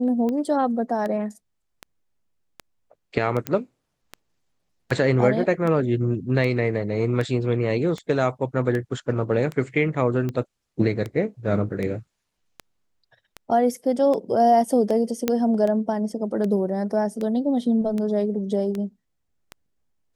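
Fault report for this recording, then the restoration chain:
scratch tick 78 rpm −17 dBFS
0:03.47: click −10 dBFS
0:15.28: click −7 dBFS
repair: click removal

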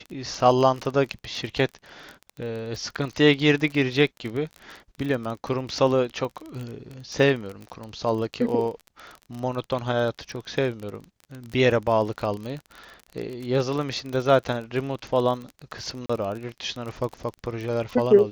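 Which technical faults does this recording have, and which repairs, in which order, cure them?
surface crackle 29 per second −30 dBFS
0:16.06–0:16.09: drop-out 35 ms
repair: click removal
repair the gap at 0:16.06, 35 ms

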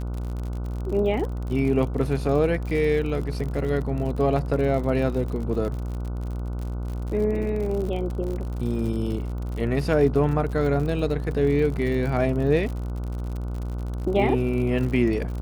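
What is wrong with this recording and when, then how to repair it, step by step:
mains buzz 60 Hz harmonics 25 −29 dBFS
surface crackle 55 per second −31 dBFS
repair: click removal
hum removal 60 Hz, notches 25

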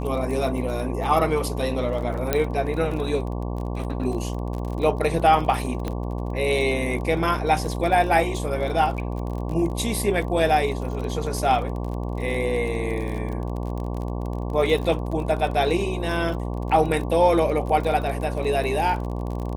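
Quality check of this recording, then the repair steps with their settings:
mains buzz 60 Hz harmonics 19 −28 dBFS
surface crackle 34 per second −30 dBFS
0:02.33: click −6 dBFS
0:05.88: click −15 dBFS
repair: click removal
hum removal 60 Hz, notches 19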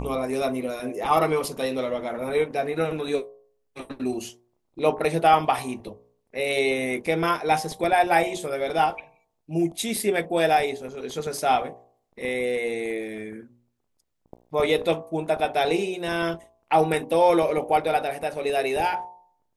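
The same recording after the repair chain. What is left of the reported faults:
0:05.88: click

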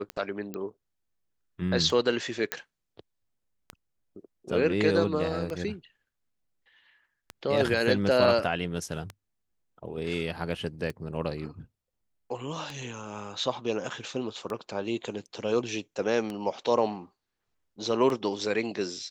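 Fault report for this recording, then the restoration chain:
scratch tick 33 1/3 rpm −20 dBFS
0:00.54: click −21 dBFS
0:02.52: click −11 dBFS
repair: click removal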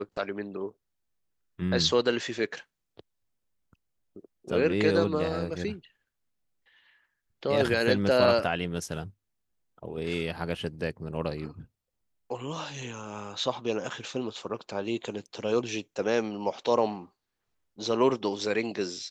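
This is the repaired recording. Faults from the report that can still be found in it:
none of them is left

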